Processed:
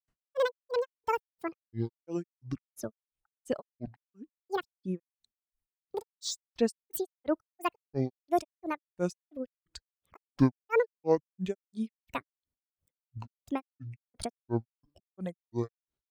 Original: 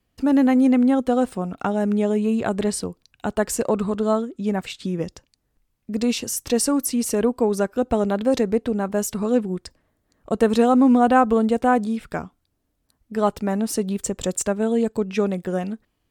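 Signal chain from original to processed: reverb removal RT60 0.98 s; grains 0.174 s, grains 2.9/s, pitch spread up and down by 12 st; gain -5.5 dB

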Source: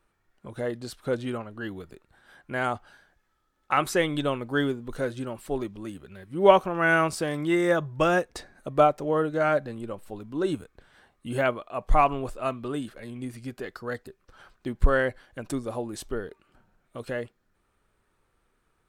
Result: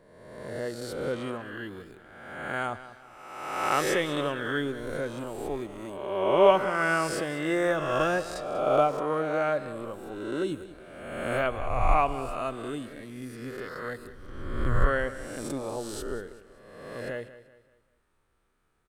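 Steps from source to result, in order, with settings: spectral swells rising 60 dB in 1.32 s; on a send: feedback echo 0.192 s, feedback 39%, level -15 dB; on the sum: gain -5.5 dB

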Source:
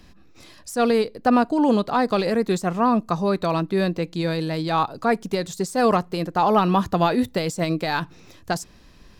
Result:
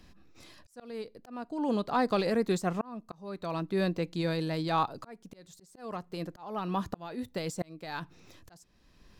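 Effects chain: auto swell 0.748 s; gain -6.5 dB

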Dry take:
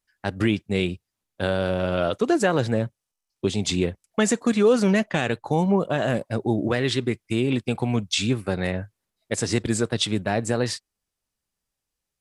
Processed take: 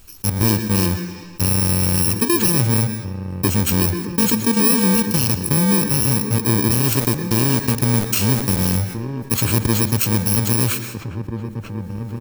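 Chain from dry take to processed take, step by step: FFT order left unsorted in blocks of 64 samples; recorder AGC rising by 10 dB/s; low shelf 170 Hz +10 dB; 6.86–8.77 sample gate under -25 dBFS; outdoor echo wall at 280 m, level -17 dB; on a send at -15 dB: reverb RT60 0.95 s, pre-delay 0.11 s; on the sum: fast leveller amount 50%

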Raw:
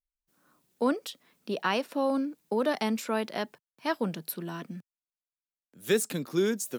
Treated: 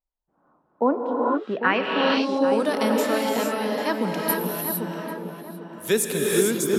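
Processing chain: tape echo 0.794 s, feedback 37%, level -5 dB, low-pass 1600 Hz; non-linear reverb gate 0.48 s rising, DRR -1 dB; low-pass sweep 860 Hz -> 12000 Hz, 1.19–2.79; gain +3 dB

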